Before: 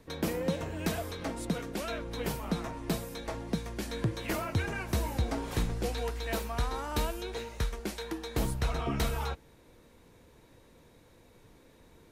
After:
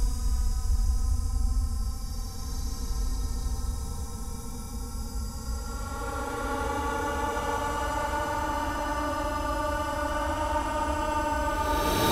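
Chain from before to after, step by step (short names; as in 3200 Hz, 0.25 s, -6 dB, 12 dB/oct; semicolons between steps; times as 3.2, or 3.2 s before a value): spectral gain 6.35–6.81, 250–4600 Hz -20 dB; Paulstretch 39×, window 0.05 s, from 6.65; gain +8 dB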